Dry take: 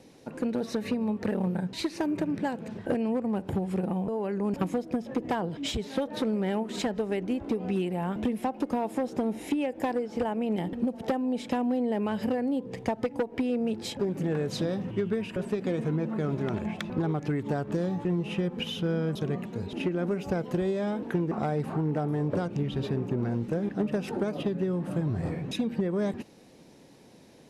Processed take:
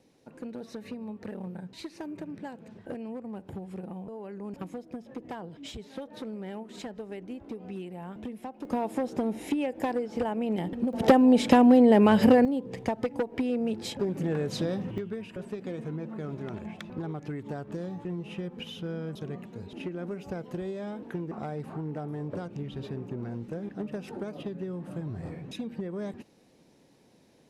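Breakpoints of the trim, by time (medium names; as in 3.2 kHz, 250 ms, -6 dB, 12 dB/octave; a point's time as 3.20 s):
-10 dB
from 8.65 s -0.5 dB
from 10.93 s +10 dB
from 12.45 s -0.5 dB
from 14.98 s -7 dB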